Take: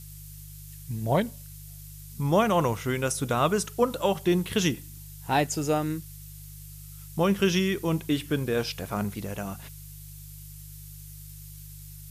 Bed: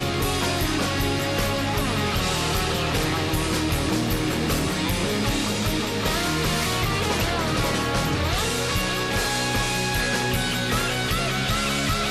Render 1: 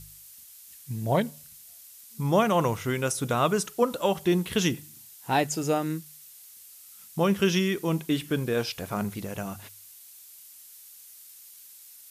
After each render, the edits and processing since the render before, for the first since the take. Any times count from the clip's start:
hum removal 50 Hz, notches 3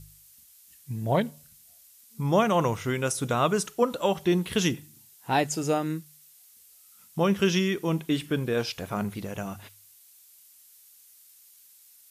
noise reduction from a noise print 6 dB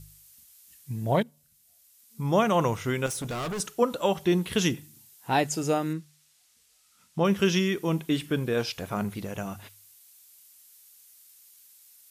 0:01.23–0:02.48: fade in, from −16.5 dB
0:03.06–0:03.60: gain into a clipping stage and back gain 30 dB
0:05.93–0:07.25: high-frequency loss of the air 57 metres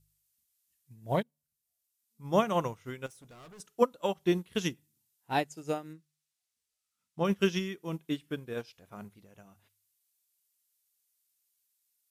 expander for the loud parts 2.5 to 1, over −33 dBFS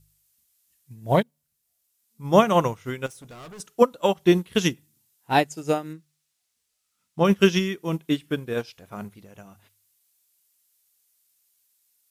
level +9.5 dB
brickwall limiter −3 dBFS, peak gain reduction 3 dB

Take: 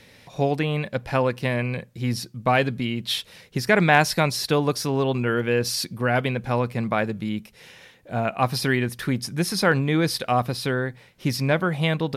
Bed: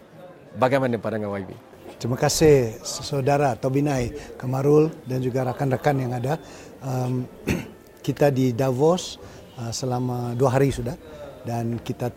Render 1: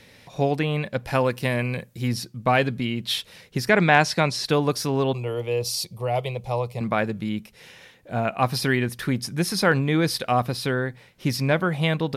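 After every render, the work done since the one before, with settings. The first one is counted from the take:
0:01.05–0:02.08: high-shelf EQ 7,500 Hz +10.5 dB
0:03.69–0:04.46: band-pass filter 100–7,900 Hz
0:05.13–0:06.81: phaser with its sweep stopped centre 650 Hz, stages 4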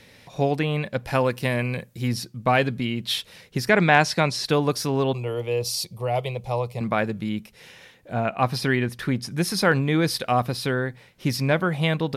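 0:08.13–0:09.31: high-shelf EQ 6,800 Hz −7.5 dB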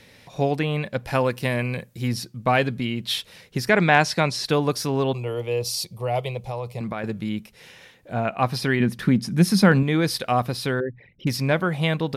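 0:06.40–0:07.04: downward compressor, threshold −25 dBFS
0:08.80–0:09.83: parametric band 200 Hz +12 dB
0:10.80–0:11.27: spectral envelope exaggerated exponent 3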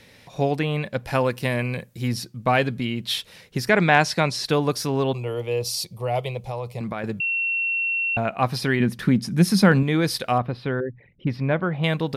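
0:07.20–0:08.17: beep over 2,720 Hz −21 dBFS
0:10.38–0:11.84: high-frequency loss of the air 390 metres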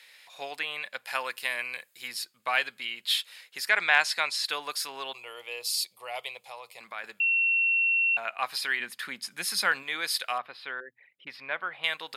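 high-pass filter 1,400 Hz 12 dB per octave
notch filter 5,800 Hz, Q 6.5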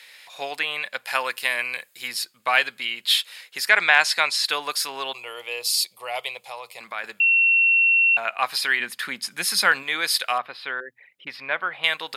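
level +7 dB
brickwall limiter −2 dBFS, peak gain reduction 3 dB

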